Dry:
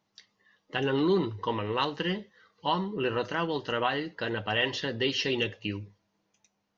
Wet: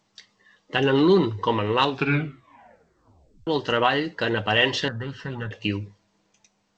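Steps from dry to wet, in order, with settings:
0:01.79: tape stop 1.68 s
0:04.88–0:05.51: drawn EQ curve 170 Hz 0 dB, 350 Hz −18 dB, 1,500 Hz +6 dB, 2,200 Hz −24 dB
level +7.5 dB
G.722 64 kbit/s 16,000 Hz

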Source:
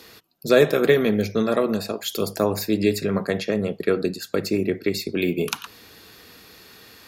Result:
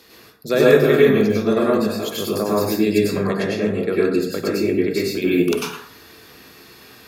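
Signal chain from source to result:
dense smooth reverb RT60 0.61 s, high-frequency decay 0.55×, pre-delay 85 ms, DRR −6 dB
level −3.5 dB

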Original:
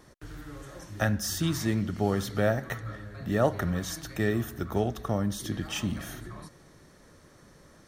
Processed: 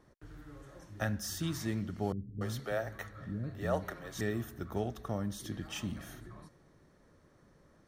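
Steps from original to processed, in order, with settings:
0:02.12–0:04.21: multiband delay without the direct sound lows, highs 290 ms, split 300 Hz
one half of a high-frequency compander decoder only
level −7.5 dB

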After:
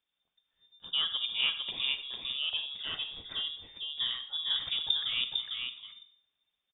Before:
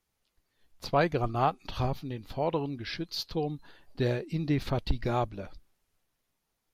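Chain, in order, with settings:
gain on a spectral selection 0:00.79–0:01.25, 790–1,800 Hz −14 dB
on a send: single-tap delay 452 ms −4 dB
on the sum: voice inversion scrambler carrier 3,600 Hz
four-comb reverb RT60 0.55 s, DRR 11 dB
level −5.5 dB

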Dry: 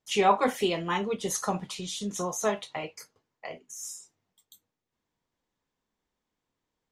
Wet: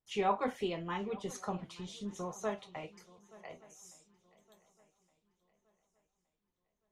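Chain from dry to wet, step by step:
low-pass filter 3,000 Hz 6 dB per octave
low-shelf EQ 87 Hz +11 dB
feedback echo with a long and a short gap by turns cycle 1,167 ms, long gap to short 3 to 1, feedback 33%, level −21 dB
level −9 dB

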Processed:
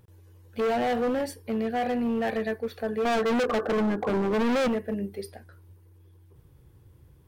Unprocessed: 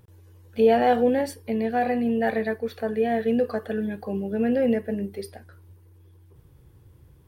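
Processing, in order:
0:03.05–0:04.68: drawn EQ curve 130 Hz 0 dB, 250 Hz +14 dB, 1,500 Hz +13 dB, 2,200 Hz −9 dB
hard clipping −21 dBFS, distortion −2 dB
level −2 dB

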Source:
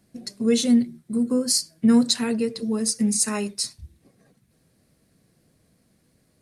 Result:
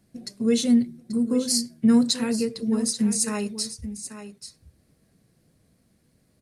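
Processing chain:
low-shelf EQ 200 Hz +4 dB
single-tap delay 835 ms −12 dB
level −2.5 dB

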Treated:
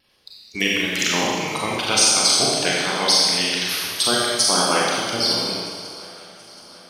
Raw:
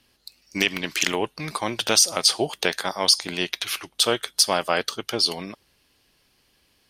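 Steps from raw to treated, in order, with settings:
spectral magnitudes quantised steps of 30 dB
pitch vibrato 2.5 Hz 34 cents
feedback echo with a long and a short gap by turns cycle 726 ms, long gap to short 3 to 1, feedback 57%, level −21.5 dB
four-comb reverb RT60 1.8 s, combs from 30 ms, DRR −5 dB
level −1.5 dB

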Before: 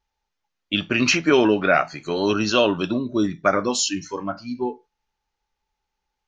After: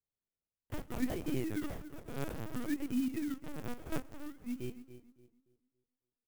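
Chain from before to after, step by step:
0:03.54–0:04.19: variable-slope delta modulation 32 kbit/s
in parallel at +3 dB: brickwall limiter −16.5 dBFS, peak gain reduction 11 dB
on the sum: formant filter i
flanger 0.54 Hz, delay 8.7 ms, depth 5 ms, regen +47%
sample-and-hold swept by an LFO 31×, swing 100% 0.59 Hz
on a send: tape delay 283 ms, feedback 34%, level −11.5 dB, low-pass 1,900 Hz
on the sum: linear-prediction vocoder at 8 kHz pitch kept
slap from a distant wall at 22 metres, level −25 dB
converter with an unsteady clock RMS 0.048 ms
level −6.5 dB

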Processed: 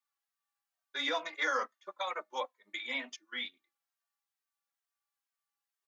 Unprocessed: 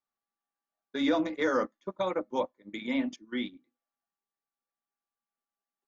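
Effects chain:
high-pass filter 1,100 Hz 12 dB per octave
barber-pole flanger 2.9 ms −2.2 Hz
level +6 dB

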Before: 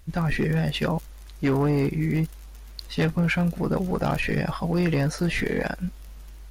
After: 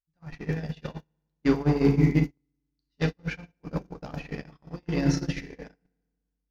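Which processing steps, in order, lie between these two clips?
high shelf with overshoot 7,300 Hz −7.5 dB, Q 3
feedback delay network reverb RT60 1.9 s, low-frequency decay 1.45×, high-frequency decay 0.7×, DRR 3.5 dB
noise gate −18 dBFS, range −49 dB

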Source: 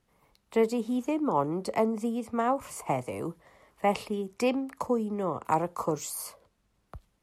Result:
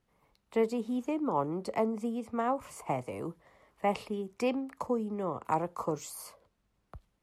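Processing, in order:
high-shelf EQ 5,700 Hz −5.5 dB
level −3.5 dB

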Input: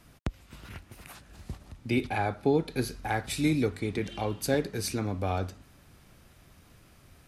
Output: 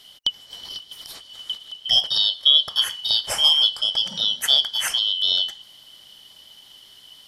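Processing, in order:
band-splitting scrambler in four parts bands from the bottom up 3412
level +8.5 dB

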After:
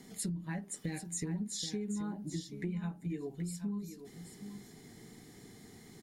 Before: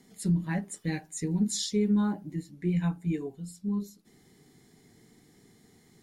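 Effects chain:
downward compressor 12 to 1, threshold −40 dBFS, peak gain reduction 18.5 dB
single-tap delay 779 ms −10 dB
level +5 dB

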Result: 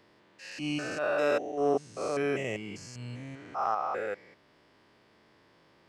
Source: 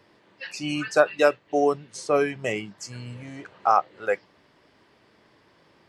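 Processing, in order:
spectrum averaged block by block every 200 ms
transient designer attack −7 dB, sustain −1 dB
level −1.5 dB

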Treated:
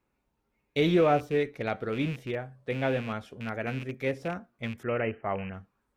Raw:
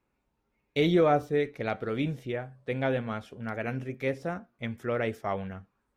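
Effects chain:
loose part that buzzes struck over −36 dBFS, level −31 dBFS
0:04.83–0:05.54: linear-phase brick-wall low-pass 3,100 Hz

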